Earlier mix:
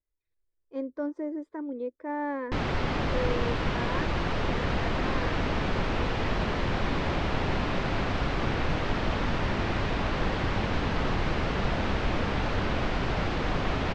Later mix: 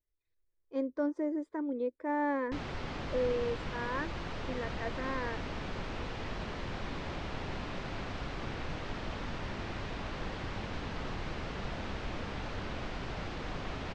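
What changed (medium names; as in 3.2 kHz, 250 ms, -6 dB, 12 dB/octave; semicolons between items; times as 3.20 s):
background -11.0 dB; master: add treble shelf 5.6 kHz +7.5 dB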